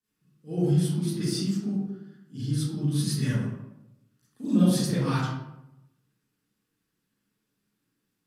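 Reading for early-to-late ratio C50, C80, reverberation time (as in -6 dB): -3.0 dB, 1.0 dB, 0.90 s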